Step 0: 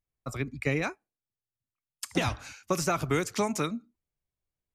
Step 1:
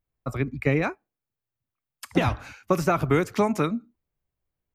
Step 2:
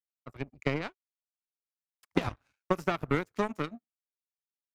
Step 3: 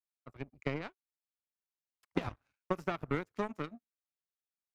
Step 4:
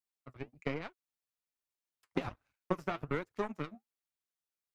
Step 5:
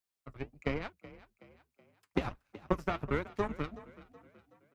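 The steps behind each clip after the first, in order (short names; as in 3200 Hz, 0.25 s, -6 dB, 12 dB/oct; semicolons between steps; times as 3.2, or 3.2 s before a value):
bell 7100 Hz -13.5 dB 2.1 oct; gain +6.5 dB
power-law curve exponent 2; gain -1.5 dB
high shelf 4600 Hz -6 dB; gain -5.5 dB
flange 1.2 Hz, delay 0.8 ms, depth 9.3 ms, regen +53%; gain +3.5 dB
octaver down 2 oct, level -5 dB; frequency-shifting echo 0.374 s, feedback 45%, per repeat +33 Hz, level -18 dB; gain +2.5 dB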